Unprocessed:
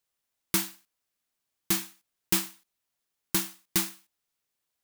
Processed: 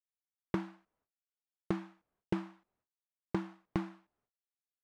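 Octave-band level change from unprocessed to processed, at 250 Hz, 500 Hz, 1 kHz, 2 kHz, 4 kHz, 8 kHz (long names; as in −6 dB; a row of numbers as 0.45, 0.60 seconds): −1.5 dB, +1.0 dB, −4.0 dB, −12.0 dB, −23.5 dB, below −35 dB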